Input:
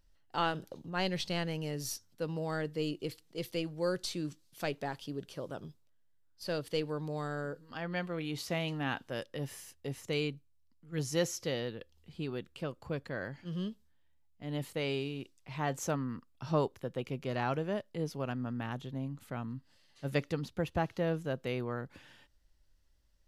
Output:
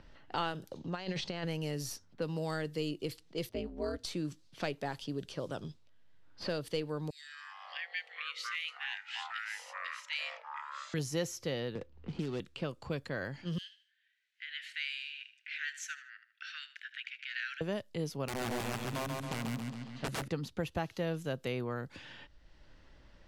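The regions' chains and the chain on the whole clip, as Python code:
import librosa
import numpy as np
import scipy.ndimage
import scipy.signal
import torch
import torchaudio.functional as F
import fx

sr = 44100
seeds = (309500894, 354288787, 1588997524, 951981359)

y = fx.chain(x, sr, fx.lowpass(hz=7200.0, slope=24),
    fx.low_shelf(hz=170.0, db=-6.5),
    fx.over_compress(threshold_db=-38.0, ratio=-0.5), at=(0.8, 1.45))
y = fx.chain(y, sr, fx.lowpass(hz=1200.0, slope=6),
    fx.ring_mod(carrier_hz=110.0), at=(3.49, 4.05))
y = fx.chain(y, sr, fx.steep_highpass(hz=1800.0, slope=72),
    fx.echo_pitch(ms=84, semitones=-7, count=3, db_per_echo=-6.0), at=(7.1, 10.94))
y = fx.chain(y, sr, fx.median_filter(points=25),
    fx.lowpass(hz=7500.0, slope=12),
    fx.band_squash(depth_pct=70), at=(11.75, 12.4))
y = fx.chain(y, sr, fx.steep_highpass(hz=1500.0, slope=96),
    fx.notch(hz=5000.0, q=21.0),
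    fx.echo_feedback(ms=77, feedback_pct=32, wet_db=-14.5), at=(13.58, 17.61))
y = fx.chain(y, sr, fx.overflow_wrap(gain_db=32.0),
    fx.echo_feedback(ms=137, feedback_pct=48, wet_db=-3.5), at=(18.26, 20.28))
y = fx.env_lowpass(y, sr, base_hz=2600.0, full_db=-34.0)
y = fx.band_squash(y, sr, depth_pct=70)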